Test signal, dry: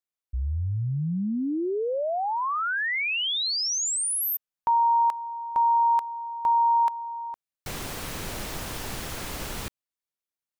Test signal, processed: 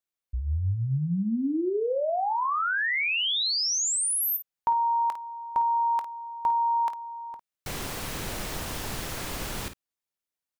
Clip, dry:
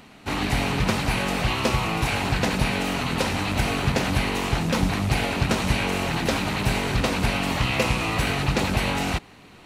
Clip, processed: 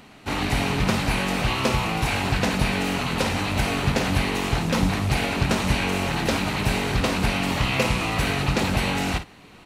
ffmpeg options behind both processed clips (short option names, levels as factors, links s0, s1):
-af "aecho=1:1:22|53:0.168|0.282"